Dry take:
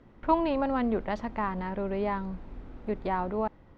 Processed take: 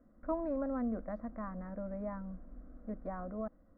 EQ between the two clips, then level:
low-pass filter 1,100 Hz 12 dB per octave
phaser with its sweep stopped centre 590 Hz, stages 8
−6.0 dB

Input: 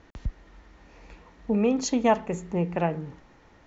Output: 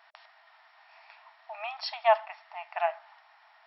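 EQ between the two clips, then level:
linear-phase brick-wall band-pass 620–5,600 Hz
+1.0 dB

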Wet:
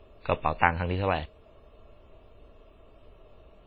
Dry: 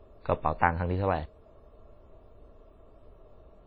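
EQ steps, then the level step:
parametric band 2,800 Hz +12.5 dB 0.98 octaves
0.0 dB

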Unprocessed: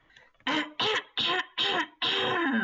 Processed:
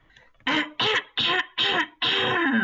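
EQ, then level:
dynamic equaliser 2,100 Hz, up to +5 dB, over −39 dBFS, Q 0.93
low-shelf EQ 190 Hz +8 dB
+1.5 dB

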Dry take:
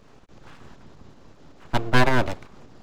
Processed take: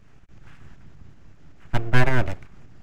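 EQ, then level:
high-shelf EQ 5,100 Hz −10 dB
dynamic equaliser 520 Hz, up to +6 dB, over −37 dBFS, Q 0.99
octave-band graphic EQ 250/500/1,000/4,000 Hz −7/−12/−10/−9 dB
+4.5 dB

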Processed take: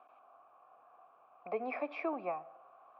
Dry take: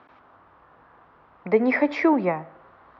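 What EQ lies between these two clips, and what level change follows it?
dynamic equaliser 660 Hz, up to −6 dB, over −33 dBFS, Q 1.3
formant filter a
+1.0 dB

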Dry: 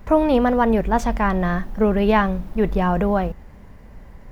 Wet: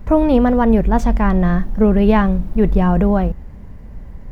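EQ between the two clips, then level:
low-shelf EQ 350 Hz +10.5 dB
−1.5 dB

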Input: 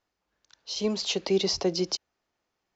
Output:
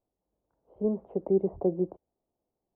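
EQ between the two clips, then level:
inverse Chebyshev low-pass filter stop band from 4,300 Hz, stop band 80 dB
0.0 dB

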